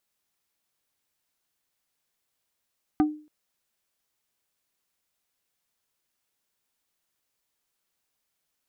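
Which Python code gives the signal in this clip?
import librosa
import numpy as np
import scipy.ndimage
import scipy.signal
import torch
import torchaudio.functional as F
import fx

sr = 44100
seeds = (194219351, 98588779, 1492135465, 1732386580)

y = fx.strike_wood(sr, length_s=0.28, level_db=-15, body='plate', hz=303.0, decay_s=0.39, tilt_db=7.0, modes=5)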